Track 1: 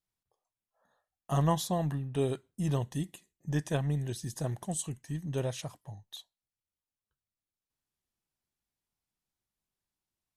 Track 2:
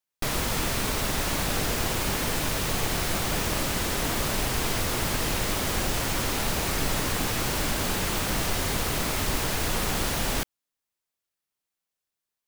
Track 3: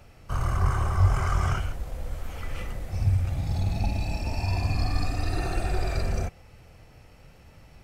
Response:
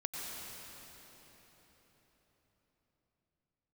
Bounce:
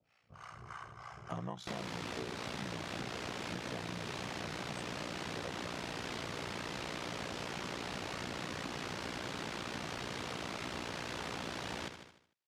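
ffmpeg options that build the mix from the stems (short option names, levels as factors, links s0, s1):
-filter_complex "[0:a]volume=1[s0];[1:a]adelay=1450,volume=0.944,asplit=2[s1][s2];[s2]volume=0.299[s3];[2:a]tiltshelf=f=760:g=-6.5,acrossover=split=590[s4][s5];[s4]aeval=exprs='val(0)*(1-1/2+1/2*cos(2*PI*3.3*n/s))':c=same[s6];[s5]aeval=exprs='val(0)*(1-1/2-1/2*cos(2*PI*3.3*n/s))':c=same[s7];[s6][s7]amix=inputs=2:normalize=0,volume=0.251,asplit=2[s8][s9];[s9]volume=0.531[s10];[s3][s10]amix=inputs=2:normalize=0,aecho=0:1:75|150|225|300|375|450:1|0.44|0.194|0.0852|0.0375|0.0165[s11];[s0][s1][s8][s11]amix=inputs=4:normalize=0,aeval=exprs='val(0)*sin(2*PI*30*n/s)':c=same,highpass=130,lowpass=4800,acompressor=threshold=0.0126:ratio=6"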